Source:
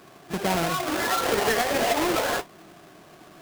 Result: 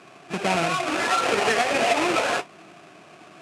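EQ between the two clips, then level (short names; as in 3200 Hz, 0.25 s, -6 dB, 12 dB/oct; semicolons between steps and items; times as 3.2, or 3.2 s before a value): speaker cabinet 110–9500 Hz, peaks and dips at 700 Hz +3 dB, 1300 Hz +4 dB, 2500 Hz +9 dB; 0.0 dB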